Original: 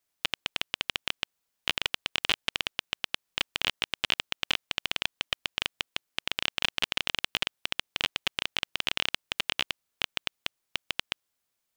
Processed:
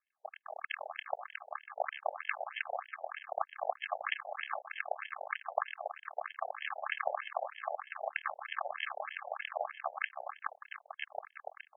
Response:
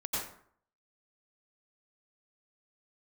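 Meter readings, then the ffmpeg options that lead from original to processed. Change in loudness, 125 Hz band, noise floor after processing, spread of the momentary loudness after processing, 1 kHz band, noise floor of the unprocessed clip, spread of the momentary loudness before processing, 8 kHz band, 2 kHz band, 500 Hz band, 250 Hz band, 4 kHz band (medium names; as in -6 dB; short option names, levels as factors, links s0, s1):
-8.5 dB, under -40 dB, -77 dBFS, 7 LU, +4.0 dB, -81 dBFS, 5 LU, under -40 dB, -7.0 dB, +5.0 dB, under -40 dB, -22.0 dB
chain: -filter_complex "[0:a]bass=f=250:g=4,treble=f=4000:g=9,acrossover=split=400|1500[s0][s1][s2];[s2]alimiter=limit=0.141:level=0:latency=1[s3];[s0][s1][s3]amix=inputs=3:normalize=0,aecho=1:1:250|450|610|738|840.4:0.631|0.398|0.251|0.158|0.1,flanger=delay=22.5:depth=7.1:speed=2.3,aresample=11025,acrusher=samples=23:mix=1:aa=0.000001,aresample=44100,afftfilt=real='re*between(b*sr/1024,630*pow(2400/630,0.5+0.5*sin(2*PI*3.2*pts/sr))/1.41,630*pow(2400/630,0.5+0.5*sin(2*PI*3.2*pts/sr))*1.41)':imag='im*between(b*sr/1024,630*pow(2400/630,0.5+0.5*sin(2*PI*3.2*pts/sr))/1.41,630*pow(2400/630,0.5+0.5*sin(2*PI*3.2*pts/sr))*1.41)':win_size=1024:overlap=0.75,volume=5.01"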